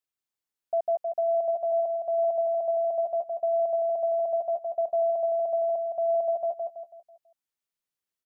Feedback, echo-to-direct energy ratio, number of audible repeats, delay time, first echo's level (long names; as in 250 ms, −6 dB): 40%, −3.5 dB, 4, 164 ms, −4.5 dB